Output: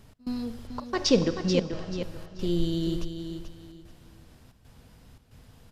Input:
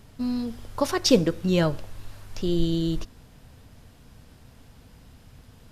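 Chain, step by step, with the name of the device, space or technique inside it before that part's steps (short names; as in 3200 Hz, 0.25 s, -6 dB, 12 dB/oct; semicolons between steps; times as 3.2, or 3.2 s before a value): 0.67–2.03 LPF 6600 Hz 24 dB/oct; Schroeder reverb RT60 1.6 s, combs from 31 ms, DRR 12 dB; trance gate with a delay (step gate "x.xxxx.xxxx" 113 bpm -24 dB; feedback echo 0.435 s, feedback 26%, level -8.5 dB); gain -3 dB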